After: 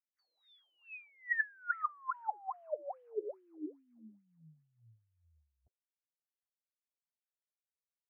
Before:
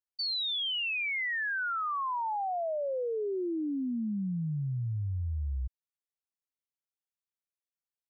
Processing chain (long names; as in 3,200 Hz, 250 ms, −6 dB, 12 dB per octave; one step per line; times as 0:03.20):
LFO wah 2.4 Hz 330–2,200 Hz, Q 16
formants moved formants +6 semitones
high shelf with overshoot 2,600 Hz −11.5 dB, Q 1.5
level +6 dB